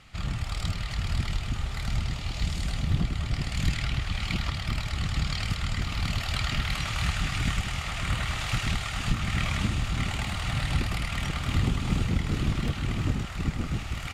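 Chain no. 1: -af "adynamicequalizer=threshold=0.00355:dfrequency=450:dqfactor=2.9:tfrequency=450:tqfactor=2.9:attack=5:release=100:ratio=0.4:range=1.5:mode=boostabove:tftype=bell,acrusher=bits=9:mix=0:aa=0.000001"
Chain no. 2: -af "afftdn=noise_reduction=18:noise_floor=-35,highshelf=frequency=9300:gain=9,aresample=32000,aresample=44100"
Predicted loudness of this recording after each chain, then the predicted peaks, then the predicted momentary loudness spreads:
−29.5, −30.5 LKFS; −11.5, −12.0 dBFS; 4, 5 LU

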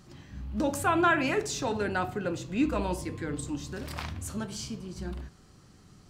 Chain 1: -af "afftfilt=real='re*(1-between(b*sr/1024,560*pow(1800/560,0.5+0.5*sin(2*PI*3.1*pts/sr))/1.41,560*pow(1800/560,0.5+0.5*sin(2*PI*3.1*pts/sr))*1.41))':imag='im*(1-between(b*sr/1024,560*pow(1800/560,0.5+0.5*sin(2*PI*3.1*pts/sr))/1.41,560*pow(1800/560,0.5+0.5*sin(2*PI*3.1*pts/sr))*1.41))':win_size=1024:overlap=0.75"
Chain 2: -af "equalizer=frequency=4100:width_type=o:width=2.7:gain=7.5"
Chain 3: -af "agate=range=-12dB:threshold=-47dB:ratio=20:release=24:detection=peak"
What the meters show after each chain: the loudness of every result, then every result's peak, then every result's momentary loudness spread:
−31.5, −28.5, −30.5 LKFS; −15.0, −9.5, −13.0 dBFS; 13, 16, 14 LU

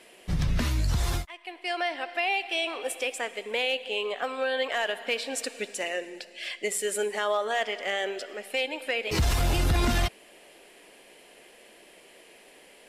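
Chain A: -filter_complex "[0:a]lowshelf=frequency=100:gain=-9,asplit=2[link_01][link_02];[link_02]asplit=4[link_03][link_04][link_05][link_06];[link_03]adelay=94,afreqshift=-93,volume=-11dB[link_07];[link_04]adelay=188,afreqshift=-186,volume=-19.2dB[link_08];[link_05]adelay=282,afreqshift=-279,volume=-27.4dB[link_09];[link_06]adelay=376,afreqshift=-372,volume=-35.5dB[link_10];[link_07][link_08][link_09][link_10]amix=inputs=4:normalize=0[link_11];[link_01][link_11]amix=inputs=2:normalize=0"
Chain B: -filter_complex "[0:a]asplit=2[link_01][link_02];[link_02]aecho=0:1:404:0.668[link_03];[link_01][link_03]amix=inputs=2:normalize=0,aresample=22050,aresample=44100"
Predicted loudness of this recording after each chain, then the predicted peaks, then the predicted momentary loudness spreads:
−29.5, −27.5 LKFS; −15.5, −13.0 dBFS; 8, 7 LU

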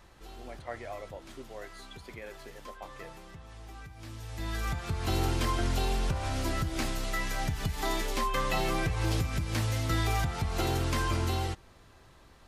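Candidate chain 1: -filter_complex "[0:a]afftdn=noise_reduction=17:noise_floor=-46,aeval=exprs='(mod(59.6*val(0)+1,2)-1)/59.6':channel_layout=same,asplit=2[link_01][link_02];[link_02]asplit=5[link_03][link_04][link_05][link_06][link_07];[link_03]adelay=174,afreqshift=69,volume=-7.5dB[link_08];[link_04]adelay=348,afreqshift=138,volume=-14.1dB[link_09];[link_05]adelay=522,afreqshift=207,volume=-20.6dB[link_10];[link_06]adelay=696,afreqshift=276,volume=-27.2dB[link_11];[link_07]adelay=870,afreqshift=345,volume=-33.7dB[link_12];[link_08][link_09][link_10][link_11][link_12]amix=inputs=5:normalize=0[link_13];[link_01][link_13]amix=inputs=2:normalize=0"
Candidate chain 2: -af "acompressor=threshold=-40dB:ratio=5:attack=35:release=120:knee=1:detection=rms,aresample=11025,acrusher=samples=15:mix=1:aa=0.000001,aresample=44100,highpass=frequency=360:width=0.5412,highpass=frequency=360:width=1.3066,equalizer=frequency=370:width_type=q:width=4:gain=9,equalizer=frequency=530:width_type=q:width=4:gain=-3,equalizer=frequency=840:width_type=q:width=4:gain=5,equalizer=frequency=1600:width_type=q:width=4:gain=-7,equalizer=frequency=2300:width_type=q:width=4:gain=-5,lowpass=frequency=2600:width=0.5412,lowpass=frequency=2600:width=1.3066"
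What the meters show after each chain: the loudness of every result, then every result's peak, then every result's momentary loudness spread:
−38.5, −48.0 LKFS; −28.0, −31.5 dBFS; 10, 10 LU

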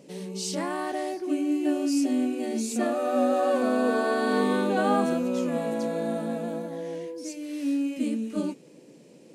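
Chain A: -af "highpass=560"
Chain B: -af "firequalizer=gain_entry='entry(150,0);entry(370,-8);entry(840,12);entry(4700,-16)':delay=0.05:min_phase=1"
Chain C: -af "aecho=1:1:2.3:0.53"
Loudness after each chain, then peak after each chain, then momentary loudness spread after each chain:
−32.0, −24.5, −27.5 LKFS; −14.5, −7.0, −11.0 dBFS; 13, 16, 9 LU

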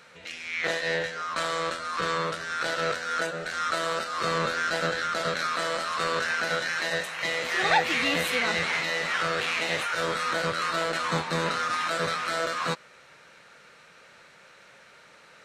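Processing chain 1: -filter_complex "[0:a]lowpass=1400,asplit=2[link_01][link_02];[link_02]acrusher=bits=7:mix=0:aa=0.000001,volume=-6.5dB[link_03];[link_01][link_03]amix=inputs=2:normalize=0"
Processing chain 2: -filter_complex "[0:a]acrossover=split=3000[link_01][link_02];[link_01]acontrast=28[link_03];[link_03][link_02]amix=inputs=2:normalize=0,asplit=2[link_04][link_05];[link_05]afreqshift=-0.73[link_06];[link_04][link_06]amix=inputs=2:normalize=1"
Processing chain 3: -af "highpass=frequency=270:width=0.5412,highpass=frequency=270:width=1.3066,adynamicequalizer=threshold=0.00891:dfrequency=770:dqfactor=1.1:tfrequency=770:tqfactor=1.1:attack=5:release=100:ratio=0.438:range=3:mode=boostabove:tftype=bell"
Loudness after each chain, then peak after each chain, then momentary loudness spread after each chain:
−27.5, −26.0, −25.0 LKFS; −10.5, −8.5, −7.0 dBFS; 4, 7, 5 LU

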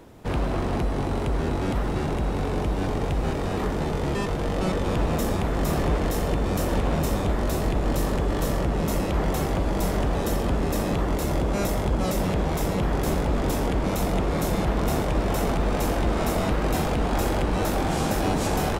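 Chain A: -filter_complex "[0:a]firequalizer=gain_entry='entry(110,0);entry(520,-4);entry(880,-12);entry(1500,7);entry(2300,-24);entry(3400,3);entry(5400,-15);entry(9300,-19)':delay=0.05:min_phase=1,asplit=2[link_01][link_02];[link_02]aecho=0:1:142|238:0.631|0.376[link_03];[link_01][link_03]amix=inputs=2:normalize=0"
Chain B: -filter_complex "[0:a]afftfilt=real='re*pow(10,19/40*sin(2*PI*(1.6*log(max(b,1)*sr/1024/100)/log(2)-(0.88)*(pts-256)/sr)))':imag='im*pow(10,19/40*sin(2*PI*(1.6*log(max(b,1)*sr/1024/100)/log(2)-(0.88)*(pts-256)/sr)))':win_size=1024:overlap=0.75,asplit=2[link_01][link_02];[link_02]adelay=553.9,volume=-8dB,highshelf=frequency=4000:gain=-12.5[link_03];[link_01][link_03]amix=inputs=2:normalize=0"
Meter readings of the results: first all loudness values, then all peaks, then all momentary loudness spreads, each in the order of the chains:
−25.5, −21.5 LKFS; −9.5, −6.0 dBFS; 2, 2 LU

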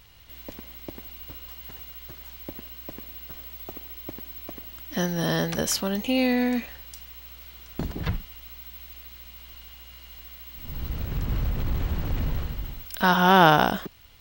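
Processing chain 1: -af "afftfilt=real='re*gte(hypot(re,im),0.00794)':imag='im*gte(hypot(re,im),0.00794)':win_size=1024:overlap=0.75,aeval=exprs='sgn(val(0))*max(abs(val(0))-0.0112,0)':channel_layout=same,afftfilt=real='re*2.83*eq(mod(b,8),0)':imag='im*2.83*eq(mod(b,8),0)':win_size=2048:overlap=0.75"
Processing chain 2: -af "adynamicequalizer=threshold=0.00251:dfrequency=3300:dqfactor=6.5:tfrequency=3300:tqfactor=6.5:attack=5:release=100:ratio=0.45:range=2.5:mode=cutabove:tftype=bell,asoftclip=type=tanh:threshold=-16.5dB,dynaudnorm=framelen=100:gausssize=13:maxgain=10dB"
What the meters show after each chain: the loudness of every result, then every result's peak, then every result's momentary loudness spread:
−27.0, −20.0 LKFS; −2.0, −6.5 dBFS; 22, 18 LU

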